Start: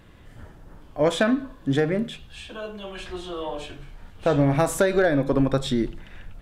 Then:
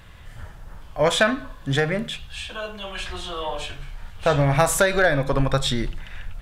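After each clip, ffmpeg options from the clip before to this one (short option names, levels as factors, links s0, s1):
-af "equalizer=f=300:t=o:w=1.6:g=-14,volume=2.37"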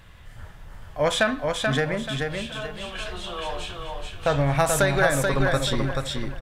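-af "aecho=1:1:433|866|1299|1732:0.631|0.196|0.0606|0.0188,volume=0.708"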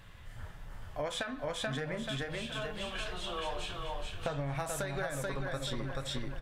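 -af "acompressor=threshold=0.0398:ratio=12,flanger=delay=6.9:depth=3.2:regen=-62:speed=1.6:shape=sinusoidal"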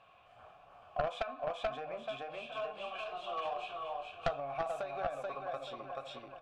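-filter_complex "[0:a]asplit=3[s0][s1][s2];[s0]bandpass=f=730:t=q:w=8,volume=1[s3];[s1]bandpass=f=1090:t=q:w=8,volume=0.501[s4];[s2]bandpass=f=2440:t=q:w=8,volume=0.355[s5];[s3][s4][s5]amix=inputs=3:normalize=0,aeval=exprs='0.0316*(cos(1*acos(clip(val(0)/0.0316,-1,1)))-cos(1*PI/2))+0.0141*(cos(4*acos(clip(val(0)/0.0316,-1,1)))-cos(4*PI/2))+0.00708*(cos(6*acos(clip(val(0)/0.0316,-1,1)))-cos(6*PI/2))':c=same,volume=2.82"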